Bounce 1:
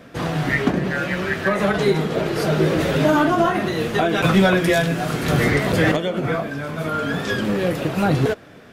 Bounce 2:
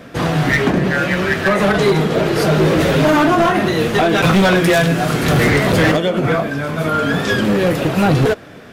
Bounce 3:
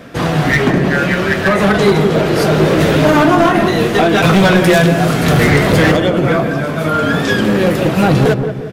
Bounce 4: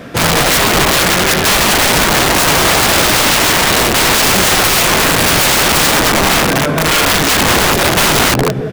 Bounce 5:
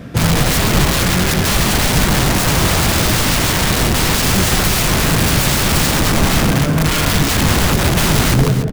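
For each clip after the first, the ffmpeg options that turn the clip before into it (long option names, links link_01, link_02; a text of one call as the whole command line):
ffmpeg -i in.wav -af "volume=15.5dB,asoftclip=hard,volume=-15.5dB,volume=6.5dB" out.wav
ffmpeg -i in.wav -filter_complex "[0:a]asplit=2[link_01][link_02];[link_02]adelay=177,lowpass=frequency=820:poles=1,volume=-5.5dB,asplit=2[link_03][link_04];[link_04]adelay=177,lowpass=frequency=820:poles=1,volume=0.5,asplit=2[link_05][link_06];[link_06]adelay=177,lowpass=frequency=820:poles=1,volume=0.5,asplit=2[link_07][link_08];[link_08]adelay=177,lowpass=frequency=820:poles=1,volume=0.5,asplit=2[link_09][link_10];[link_10]adelay=177,lowpass=frequency=820:poles=1,volume=0.5,asplit=2[link_11][link_12];[link_12]adelay=177,lowpass=frequency=820:poles=1,volume=0.5[link_13];[link_01][link_03][link_05][link_07][link_09][link_11][link_13]amix=inputs=7:normalize=0,volume=2dB" out.wav
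ffmpeg -i in.wav -af "aeval=exprs='(mod(3.35*val(0)+1,2)-1)/3.35':channel_layout=same,volume=4.5dB" out.wav
ffmpeg -i in.wav -filter_complex "[0:a]bass=frequency=250:gain=13,treble=frequency=4000:gain=2,asplit=2[link_01][link_02];[link_02]aecho=0:1:137|288:0.237|0.251[link_03];[link_01][link_03]amix=inputs=2:normalize=0,volume=-7.5dB" out.wav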